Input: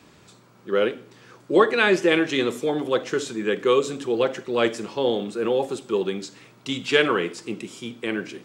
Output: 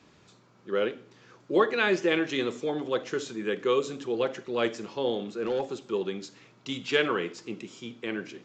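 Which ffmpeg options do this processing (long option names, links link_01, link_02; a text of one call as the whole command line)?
ffmpeg -i in.wav -filter_complex "[0:a]asettb=1/sr,asplit=3[link_01][link_02][link_03];[link_01]atrim=end=5.324[link_04];[link_02]atrim=start=5.32:end=5.76,asetpts=PTS-STARTPTS,afade=type=in:duration=0.004:curve=qsin,afade=type=out:start_time=0.436:duration=0.004:curve=qsin,volume=17dB,asoftclip=hard,volume=-17dB[link_05];[link_03]atrim=start=5.756[link_06];[link_04][link_05]acrossfade=duration=0.004:curve1=hsin:curve2=qsin[link_07];[link_07][link_06]acrossfade=duration=0.004:curve1=qsin:curve2=hsin,aresample=16000,aresample=44100,volume=-6dB" out.wav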